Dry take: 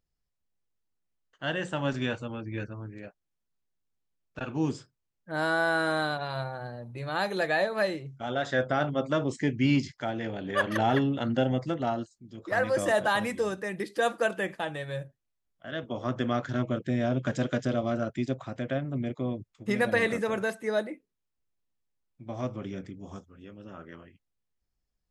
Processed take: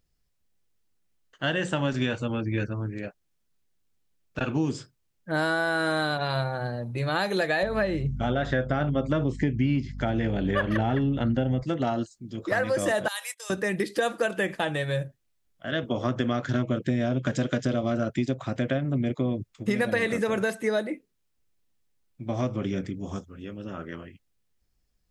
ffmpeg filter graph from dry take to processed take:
-filter_complex "[0:a]asettb=1/sr,asplit=3[a][b][c];[a]atrim=end=7.634[d];[b]atrim=start=7.63:end=11.63,asetpts=PTS-STARTPTS,afade=t=in:d=0.004:c=qsin,afade=t=out:st=3.996:d=0.004:c=qsin,acrossover=split=3400[e][f];[f]acompressor=threshold=-57dB:ratio=4:attack=1:release=60[g];[e][g]amix=inputs=2:normalize=0,lowshelf=f=170:g=9.5,aeval=exprs='val(0)+0.00891*(sin(2*PI*50*n/s)+sin(2*PI*2*50*n/s)/2+sin(2*PI*3*50*n/s)/3+sin(2*PI*4*50*n/s)/4+sin(2*PI*5*50*n/s)/5)':c=same[h];[c]atrim=start=11.626[i];[d][h]acrossfade=d=0.004:c1=hsin:c2=qsin[j];[j][i]acrossfade=d=0.004:c1=qsin:c2=hsin,asettb=1/sr,asplit=3[k][l][m];[k]atrim=end=13.084[n];[l]atrim=start=13.08:end=13.5,asetpts=PTS-STARTPTS,afade=t=in:d=0.004:c=qsin,afade=t=out:st=0.416:d=0.004:c=qsin,highpass=f=570:w=0.5412,highpass=f=570:w=1.3066,agate=range=-23dB:threshold=-42dB:ratio=16:release=100:detection=peak,aderivative[o];[m]atrim=start=13.496[p];[n][o]acrossfade=d=0.004:c1=hsin:c2=qsin[q];[q][p]acrossfade=d=0.004:c1=qsin:c2=hsin,equalizer=f=910:w=1:g=-3.5,acompressor=threshold=-31dB:ratio=6,volume=9dB"

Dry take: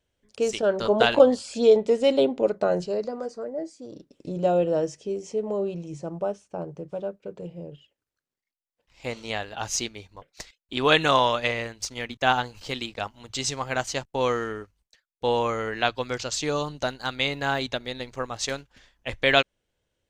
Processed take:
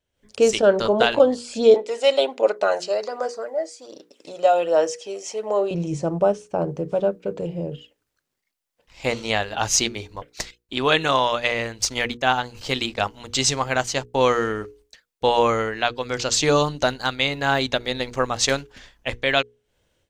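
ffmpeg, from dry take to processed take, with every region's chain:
-filter_complex "[0:a]asettb=1/sr,asplit=3[a][b][c];[a]atrim=end=1.744[d];[b]atrim=start=1.74:end=5.71,asetpts=PTS-STARTPTS,afade=t=in:d=0.004:c=qsin,afade=t=out:st=3.966:d=0.004:c=qsin,highpass=700,aphaser=in_gain=1:out_gain=1:delay=1.6:decay=0.35:speed=1.3:type=sinusoidal[e];[c]atrim=start=5.706[f];[d][e]acrossfade=d=0.004:c1=hsin:c2=qsin[g];[g][f]acrossfade=d=0.004:c1=qsin:c2=hsin,bandreject=f=60:t=h:w=6,bandreject=f=120:t=h:w=6,bandreject=f=180:t=h:w=6,bandreject=f=240:t=h:w=6,bandreject=f=300:t=h:w=6,bandreject=f=360:t=h:w=6,bandreject=f=420:t=h:w=6,bandreject=f=480:t=h:w=6,dynaudnorm=f=130:g=3:m=14dB,volume=-3.5dB"

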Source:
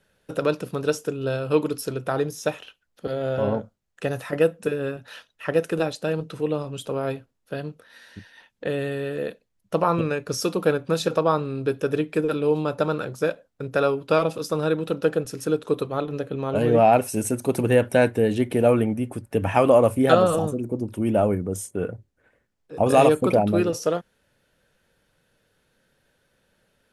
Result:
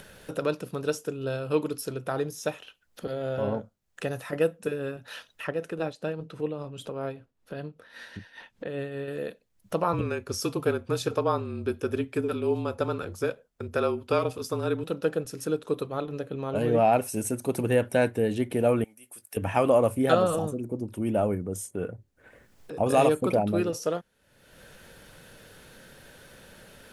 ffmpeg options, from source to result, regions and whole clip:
-filter_complex "[0:a]asettb=1/sr,asplit=3[a][b][c];[a]atrim=end=5.474[d];[b]atrim=start=5.47:end=9.08,asetpts=PTS-STARTPTS,afade=t=in:d=0.004:c=qsin,afade=t=out:st=3.606:d=0.004:c=qsin,aemphasis=mode=reproduction:type=cd,tremolo=f=5.1:d=0.49[e];[c]atrim=start=9.076[f];[d][e]acrossfade=d=0.004:c1=hsin:c2=qsin[g];[g][f]acrossfade=d=0.004:c1=qsin:c2=hsin,asettb=1/sr,asplit=3[h][i][j];[h]atrim=end=9.934[k];[i]atrim=start=9.93:end=14.84,asetpts=PTS-STARTPTS,afade=t=in:d=0.004:c=qsin,afade=t=out:st=4.906:d=0.004:c=qsin,afreqshift=-36,bandreject=f=3.9k:w=21[l];[j]atrim=start=14.836[m];[k][l]acrossfade=d=0.004:c1=hsin:c2=qsin[n];[n][m]acrossfade=d=0.004:c1=qsin:c2=hsin,asettb=1/sr,asplit=3[o][p][q];[o]atrim=end=18.844[r];[p]atrim=start=18.84:end=19.37,asetpts=PTS-STARTPTS,afade=t=in:d=0.004:c=qsin,afade=t=out:st=0.526:d=0.004:c=qsin,aderivative,asplit=2[s][t];[t]adelay=19,volume=-13dB[u];[s][u]amix=inputs=2:normalize=0,atrim=end_sample=23373[v];[q]atrim=start=19.366[w];[r][v]acrossfade=d=0.004:c1=hsin:c2=qsin[x];[x][w]acrossfade=d=0.004:c1=qsin:c2=hsin,highshelf=f=9.5k:g=4,acompressor=mode=upward:threshold=-27dB:ratio=2.5,volume=-5dB"

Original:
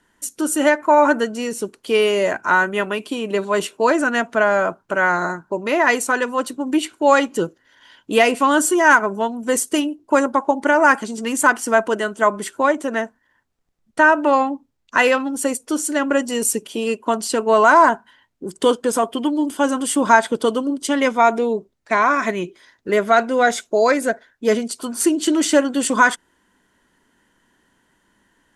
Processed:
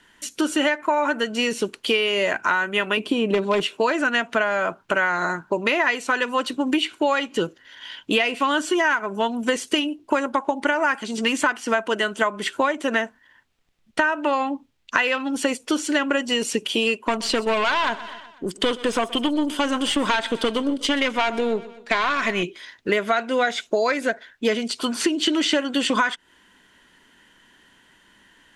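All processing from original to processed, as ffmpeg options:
-filter_complex "[0:a]asettb=1/sr,asplit=3[a][b][c];[a]atrim=end=2.974[d];[b]atrim=start=2.97:end=3.63,asetpts=PTS-STARTPTS,afade=t=in:d=0.004:c=qsin,afade=t=out:st=0.656:d=0.004:c=qsin,tiltshelf=f=1.1k:g=7,aeval=exprs='0.355*(abs(mod(val(0)/0.355+3,4)-2)-1)':c=same[e];[c]atrim=start=3.626[f];[d][e]acrossfade=d=0.004:c1=hsin:c2=qsin[g];[g][f]acrossfade=d=0.004:c1=qsin:c2=hsin,asettb=1/sr,asplit=3[h][i][j];[h]atrim=end=16.994[k];[i]atrim=start=16.99:end=22.43,asetpts=PTS-STARTPTS,afade=t=in:d=0.004:c=qsin,afade=t=out:st=5.436:d=0.004:c=qsin,aeval=exprs='(tanh(5.01*val(0)+0.4)-tanh(0.4))/5.01':c=same,aecho=1:1:124|248|372|496:0.0891|0.0463|0.0241|0.0125,atrim=end_sample=239904[l];[j]atrim=start=22.426[m];[k][l]acrossfade=d=0.004:c1=hsin:c2=qsin[n];[n][m]acrossfade=d=0.004:c1=qsin:c2=hsin,acrossover=split=5400[o][p];[p]acompressor=threshold=-41dB:ratio=4:attack=1:release=60[q];[o][q]amix=inputs=2:normalize=0,equalizer=f=2.9k:t=o:w=1.6:g=10.5,acompressor=threshold=-20dB:ratio=10,volume=2.5dB"

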